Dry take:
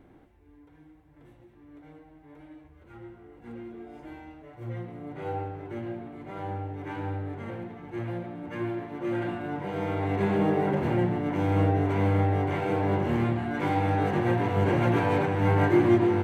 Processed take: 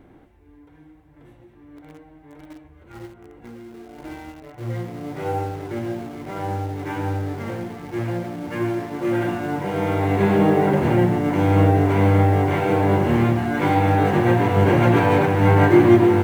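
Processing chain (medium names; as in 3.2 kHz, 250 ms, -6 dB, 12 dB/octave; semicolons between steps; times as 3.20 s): in parallel at -10 dB: bit crusher 7-bit; 3.05–3.98 s: on the sum: compression 10:1, threshold -42 dBFS, peak gain reduction 7.5 dB; trim +5.5 dB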